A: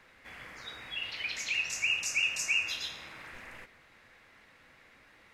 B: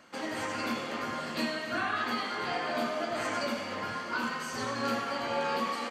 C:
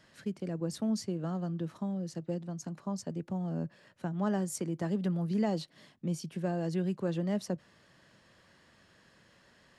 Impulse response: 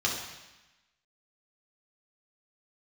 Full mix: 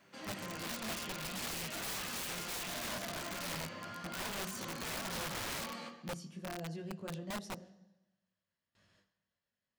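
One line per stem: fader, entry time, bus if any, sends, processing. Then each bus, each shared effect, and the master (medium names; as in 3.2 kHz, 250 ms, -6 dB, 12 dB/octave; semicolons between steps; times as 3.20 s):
-10.0 dB, 0.00 s, send -17 dB, vocoder on a held chord major triad, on C3
-5.5 dB, 0.00 s, send -12 dB, bit crusher 11-bit; feedback comb 170 Hz, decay 0.5 s, harmonics all, mix 60%
-6.5 dB, 0.00 s, send -15.5 dB, peaking EQ 310 Hz -4.5 dB 0.39 oct; chorus 0.58 Hz, delay 19 ms, depth 2.5 ms; gate with hold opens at -54 dBFS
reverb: on, RT60 1.0 s, pre-delay 3 ms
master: integer overflow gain 35 dB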